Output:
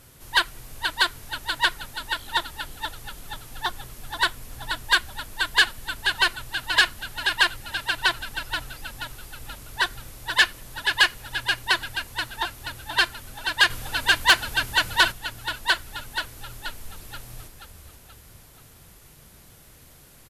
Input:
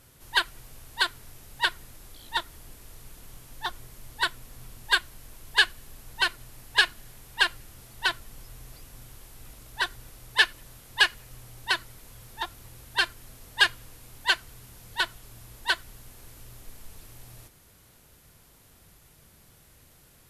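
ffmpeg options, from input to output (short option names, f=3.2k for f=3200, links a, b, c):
-filter_complex "[0:a]asplit=7[a][b][c][d][e][f][g];[b]adelay=480,afreqshift=-39,volume=-8dB[h];[c]adelay=960,afreqshift=-78,volume=-14.4dB[i];[d]adelay=1440,afreqshift=-117,volume=-20.8dB[j];[e]adelay=1920,afreqshift=-156,volume=-27.1dB[k];[f]adelay=2400,afreqshift=-195,volume=-33.5dB[l];[g]adelay=2880,afreqshift=-234,volume=-39.9dB[m];[a][h][i][j][k][l][m]amix=inputs=7:normalize=0,asettb=1/sr,asplit=3[n][o][p];[n]atrim=end=13.704[q];[o]atrim=start=13.7:end=15.12,asetpts=PTS-STARTPTS,afade=t=in:d=0.004:c=qsin,afade=t=out:st=1.416:d=0.004:c=qsin,acontrast=55[r];[p]atrim=start=15.116[s];[q][r]acrossfade=d=0.004:c1=hsin:c2=qsin[t];[t][s]acrossfade=d=0.004:c1=qsin:c2=hsin,asoftclip=type=tanh:threshold=-13.5dB,volume=5dB"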